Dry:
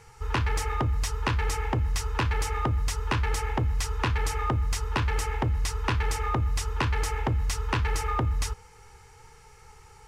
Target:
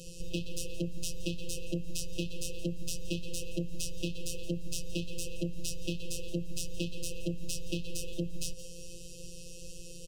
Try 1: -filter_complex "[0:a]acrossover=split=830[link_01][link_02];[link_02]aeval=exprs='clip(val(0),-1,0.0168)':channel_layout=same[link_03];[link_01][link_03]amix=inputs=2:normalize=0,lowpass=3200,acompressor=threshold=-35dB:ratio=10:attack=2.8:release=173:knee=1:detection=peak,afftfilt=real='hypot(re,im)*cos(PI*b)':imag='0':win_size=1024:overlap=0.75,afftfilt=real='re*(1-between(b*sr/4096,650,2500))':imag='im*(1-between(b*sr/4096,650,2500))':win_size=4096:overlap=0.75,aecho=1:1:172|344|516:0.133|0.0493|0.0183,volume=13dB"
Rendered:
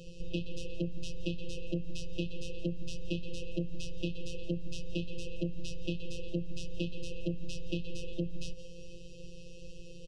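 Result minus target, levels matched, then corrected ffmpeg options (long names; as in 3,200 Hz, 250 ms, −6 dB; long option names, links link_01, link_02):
4,000 Hz band −3.5 dB
-filter_complex "[0:a]acrossover=split=830[link_01][link_02];[link_02]aeval=exprs='clip(val(0),-1,0.0168)':channel_layout=same[link_03];[link_01][link_03]amix=inputs=2:normalize=0,acompressor=threshold=-35dB:ratio=10:attack=2.8:release=173:knee=1:detection=peak,afftfilt=real='hypot(re,im)*cos(PI*b)':imag='0':win_size=1024:overlap=0.75,afftfilt=real='re*(1-between(b*sr/4096,650,2500))':imag='im*(1-between(b*sr/4096,650,2500))':win_size=4096:overlap=0.75,aecho=1:1:172|344|516:0.133|0.0493|0.0183,volume=13dB"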